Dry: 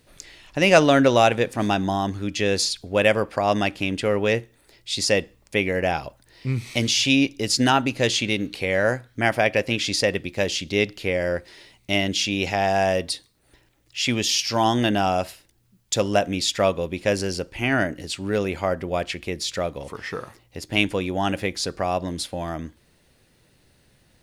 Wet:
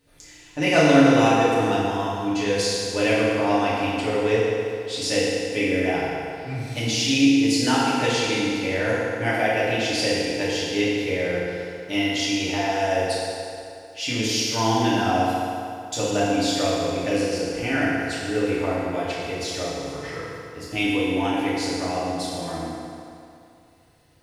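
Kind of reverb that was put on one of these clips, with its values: FDN reverb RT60 2.6 s, low-frequency decay 0.8×, high-frequency decay 0.75×, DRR -9 dB; trim -10 dB

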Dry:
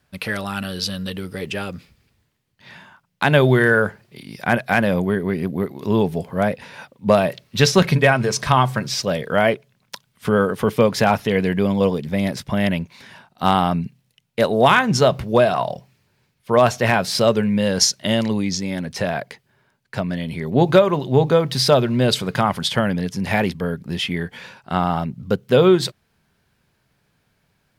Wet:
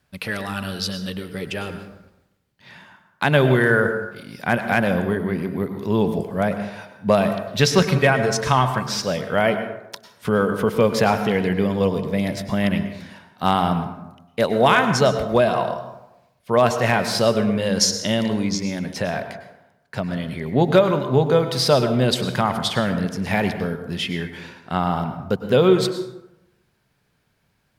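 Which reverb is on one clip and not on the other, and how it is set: plate-style reverb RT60 0.92 s, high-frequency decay 0.5×, pre-delay 90 ms, DRR 8.5 dB; trim -2 dB

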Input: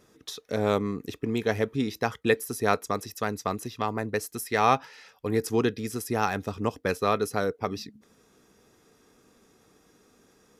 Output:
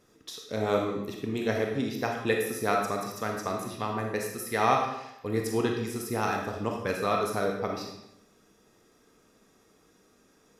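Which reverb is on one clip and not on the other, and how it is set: algorithmic reverb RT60 0.84 s, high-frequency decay 0.9×, pre-delay 0 ms, DRR 0.5 dB; trim -4 dB

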